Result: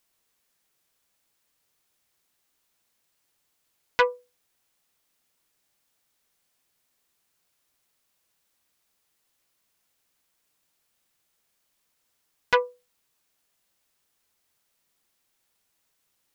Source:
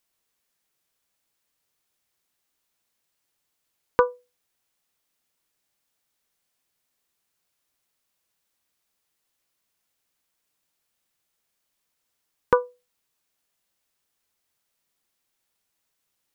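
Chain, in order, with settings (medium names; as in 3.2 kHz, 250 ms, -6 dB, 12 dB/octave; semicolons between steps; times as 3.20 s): transformer saturation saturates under 2.6 kHz; trim +3.5 dB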